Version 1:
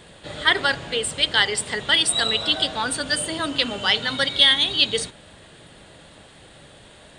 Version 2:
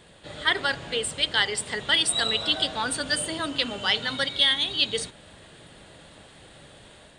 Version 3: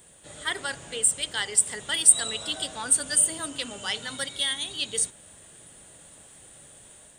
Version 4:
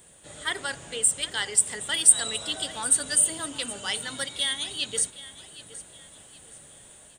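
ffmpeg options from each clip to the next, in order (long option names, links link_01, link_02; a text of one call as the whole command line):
ffmpeg -i in.wav -af "dynaudnorm=framelen=110:gausssize=5:maxgain=4dB,volume=-6dB" out.wav
ffmpeg -i in.wav -af "aexciter=amount=8.4:drive=4.4:freq=6300,volume=-6.5dB" out.wav
ffmpeg -i in.wav -af "aecho=1:1:769|1538|2307:0.15|0.0524|0.0183" out.wav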